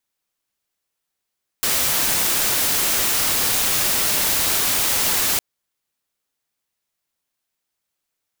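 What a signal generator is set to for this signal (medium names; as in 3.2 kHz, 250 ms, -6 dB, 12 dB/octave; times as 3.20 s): noise white, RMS -19.5 dBFS 3.76 s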